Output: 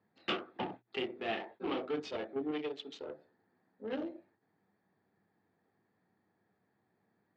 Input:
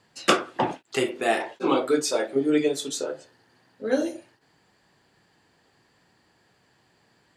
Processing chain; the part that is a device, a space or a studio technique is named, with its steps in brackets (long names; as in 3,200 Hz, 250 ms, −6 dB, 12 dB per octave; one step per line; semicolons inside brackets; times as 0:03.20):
adaptive Wiener filter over 15 samples
mains-hum notches 60/120 Hz
guitar amplifier (tube saturation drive 20 dB, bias 0.45; bass and treble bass −7 dB, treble 0 dB; loudspeaker in its box 82–3,800 Hz, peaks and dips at 100 Hz +7 dB, 200 Hz +9 dB, 560 Hz −5 dB, 1,000 Hz −6 dB, 1,500 Hz −4 dB, 3,000 Hz +8 dB)
0:02.51–0:03.06: low-shelf EQ 210 Hz −10 dB
level −7.5 dB